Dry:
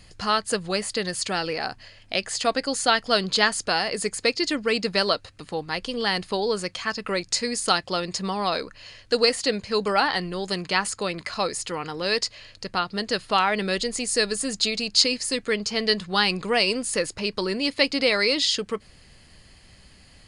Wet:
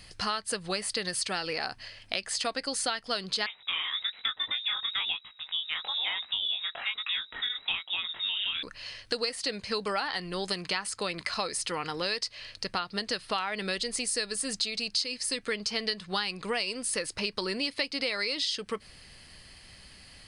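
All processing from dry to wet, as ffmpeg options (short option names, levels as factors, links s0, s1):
-filter_complex "[0:a]asettb=1/sr,asplit=3[s0][s1][s2];[s0]atrim=end=3.464[s3];[s1]atrim=start=3.46:end=8.63,asetpts=PTS-STARTPTS,afade=t=in:d=0.004:c=qsin,afade=t=out:st=5.166:d=0.004:c=qsin,lowpass=f=3300:t=q:w=0.5098,lowpass=f=3300:t=q:w=0.6013,lowpass=f=3300:t=q:w=0.9,lowpass=f=3300:t=q:w=2.563,afreqshift=-3900,flanger=delay=17.5:depth=7.8:speed=1.1[s4];[s2]atrim=start=8.626[s5];[s3][s4]acrossfade=d=0.004:c1=hsin:c2=qsin[s6];[s6][s5]acrossfade=d=0.004:c1=qsin:c2=hsin,tiltshelf=f=970:g=-3.5,bandreject=f=6900:w=7.3,acompressor=threshold=0.0398:ratio=6"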